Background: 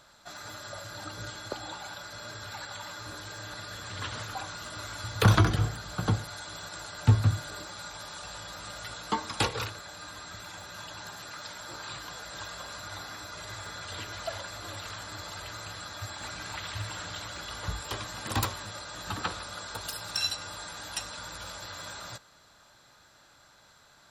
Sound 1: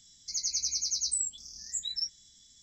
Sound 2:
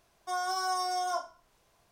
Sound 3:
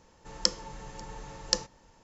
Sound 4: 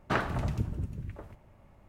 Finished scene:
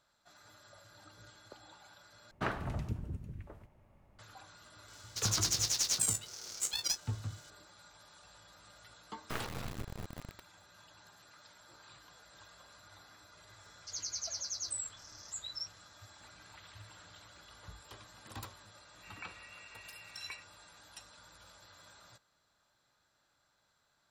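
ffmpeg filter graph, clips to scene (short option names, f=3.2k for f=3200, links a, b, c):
-filter_complex "[4:a]asplit=2[a][b];[1:a]asplit=2[c][d];[0:a]volume=-17dB[e];[c]aeval=exprs='val(0)*sgn(sin(2*PI*430*n/s))':c=same[f];[b]acrusher=bits=3:dc=4:mix=0:aa=0.000001[g];[3:a]lowpass=f=2.4k:t=q:w=0.5098,lowpass=f=2.4k:t=q:w=0.6013,lowpass=f=2.4k:t=q:w=0.9,lowpass=f=2.4k:t=q:w=2.563,afreqshift=-2800[h];[e]asplit=2[i][j];[i]atrim=end=2.314[k];[a]atrim=end=1.88,asetpts=PTS-STARTPTS,volume=-6.5dB[l];[j]atrim=start=4.186[m];[f]atrim=end=2.62,asetpts=PTS-STARTPTS,volume=-1dB,afade=t=in:d=0.004:c=hsin,afade=t=out:st=2.616:d=0.004:c=hsin,adelay=4880[n];[g]atrim=end=1.88,asetpts=PTS-STARTPTS,volume=-7.5dB,afade=t=in:d=0.004:c=hsin,afade=t=out:st=1.876:d=0.004:c=hsin,adelay=9200[o];[d]atrim=end=2.62,asetpts=PTS-STARTPTS,volume=-8.5dB,afade=t=in:d=0.004:c=hsin,afade=t=out:st=2.616:d=0.004:c=hsin,adelay=13590[p];[h]atrim=end=2.03,asetpts=PTS-STARTPTS,volume=-12dB,afade=t=in:d=0.004:c=hsin,afade=t=out:st=2.026:d=0.004:c=hsin,adelay=18770[q];[k][l]acrossfade=d=0.004:c1=hsin:c2=hsin[r];[r][m]acrossfade=d=0.004:c1=hsin:c2=hsin[s];[s][n][o][p][q]amix=inputs=5:normalize=0"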